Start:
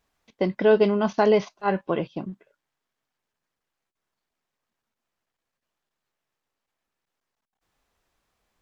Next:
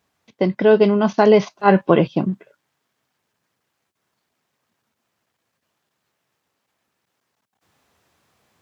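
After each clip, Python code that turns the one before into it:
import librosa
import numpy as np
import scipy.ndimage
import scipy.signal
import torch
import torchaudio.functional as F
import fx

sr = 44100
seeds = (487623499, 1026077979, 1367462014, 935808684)

y = scipy.signal.sosfilt(scipy.signal.butter(4, 88.0, 'highpass', fs=sr, output='sos'), x)
y = fx.low_shelf(y, sr, hz=180.0, db=5.5)
y = fx.rider(y, sr, range_db=4, speed_s=0.5)
y = y * librosa.db_to_amplitude(6.5)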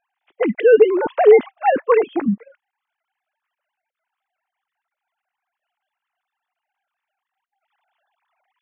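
y = fx.sine_speech(x, sr)
y = y * librosa.db_to_amplitude(1.0)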